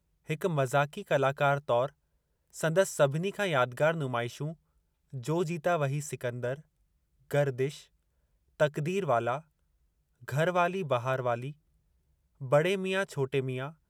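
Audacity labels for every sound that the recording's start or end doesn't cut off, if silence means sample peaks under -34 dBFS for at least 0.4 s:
2.570000	4.510000	sound
5.150000	6.540000	sound
7.310000	7.700000	sound
8.600000	9.380000	sound
10.280000	11.500000	sound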